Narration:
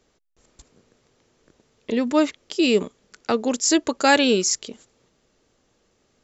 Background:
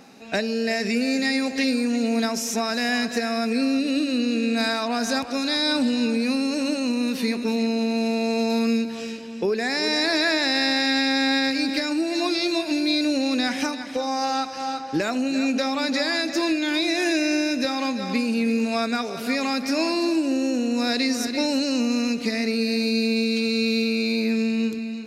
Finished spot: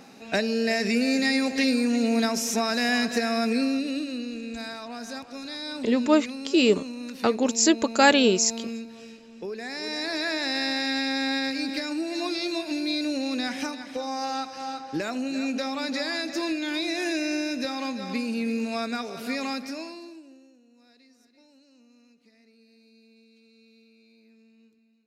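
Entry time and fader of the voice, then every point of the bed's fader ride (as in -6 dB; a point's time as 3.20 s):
3.95 s, -1.0 dB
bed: 3.49 s -0.5 dB
4.42 s -12.5 dB
9.29 s -12.5 dB
10.51 s -5.5 dB
19.52 s -5.5 dB
20.60 s -35.5 dB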